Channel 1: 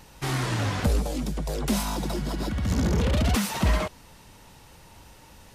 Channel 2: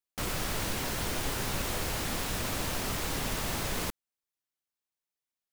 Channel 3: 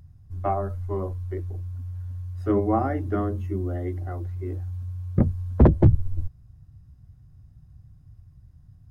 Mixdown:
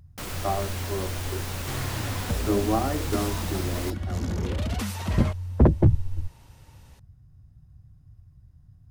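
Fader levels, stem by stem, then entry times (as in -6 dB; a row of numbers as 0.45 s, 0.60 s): -6.5 dB, -2.0 dB, -2.0 dB; 1.45 s, 0.00 s, 0.00 s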